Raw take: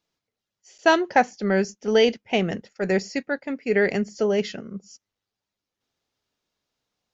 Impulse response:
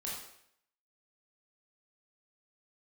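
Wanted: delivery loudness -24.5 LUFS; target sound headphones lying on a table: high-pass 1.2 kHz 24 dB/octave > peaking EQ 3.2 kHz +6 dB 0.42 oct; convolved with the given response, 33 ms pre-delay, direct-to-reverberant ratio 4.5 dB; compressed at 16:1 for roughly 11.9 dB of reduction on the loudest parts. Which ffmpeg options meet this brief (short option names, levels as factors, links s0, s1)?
-filter_complex "[0:a]acompressor=threshold=0.0631:ratio=16,asplit=2[s0][s1];[1:a]atrim=start_sample=2205,adelay=33[s2];[s1][s2]afir=irnorm=-1:irlink=0,volume=0.531[s3];[s0][s3]amix=inputs=2:normalize=0,highpass=f=1200:w=0.5412,highpass=f=1200:w=1.3066,equalizer=f=3200:t=o:w=0.42:g=6,volume=3.55"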